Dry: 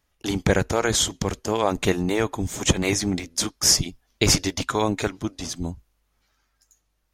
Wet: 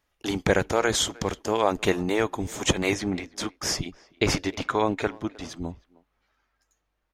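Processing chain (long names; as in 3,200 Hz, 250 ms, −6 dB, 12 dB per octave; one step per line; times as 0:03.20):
bass and treble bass −6 dB, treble −5 dB, from 0:02.93 treble −14 dB
far-end echo of a speakerphone 310 ms, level −22 dB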